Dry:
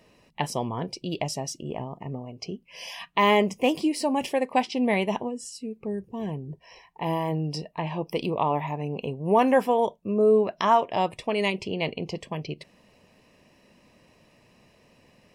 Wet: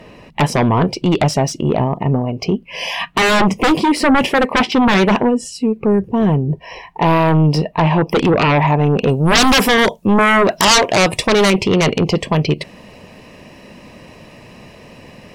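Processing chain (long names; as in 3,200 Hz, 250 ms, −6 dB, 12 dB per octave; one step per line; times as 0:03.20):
sine wavefolder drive 15 dB, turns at −8.5 dBFS
bass and treble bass +1 dB, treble −11 dB, from 0:09.08 treble +6 dB, from 0:11.32 treble −4 dB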